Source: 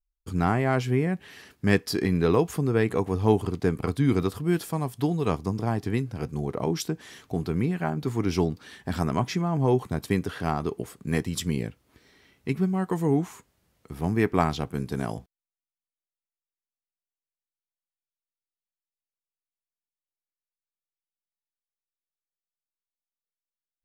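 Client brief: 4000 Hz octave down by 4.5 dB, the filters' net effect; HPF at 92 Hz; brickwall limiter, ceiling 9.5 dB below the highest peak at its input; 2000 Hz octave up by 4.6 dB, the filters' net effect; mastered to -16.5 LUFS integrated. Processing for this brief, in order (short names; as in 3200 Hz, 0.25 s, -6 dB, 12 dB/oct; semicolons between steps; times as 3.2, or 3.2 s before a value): HPF 92 Hz; bell 2000 Hz +7.5 dB; bell 4000 Hz -8.5 dB; gain +12 dB; limiter -1.5 dBFS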